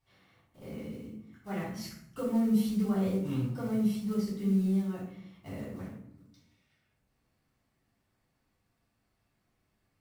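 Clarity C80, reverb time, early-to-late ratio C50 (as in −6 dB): 7.0 dB, 0.70 s, 2.5 dB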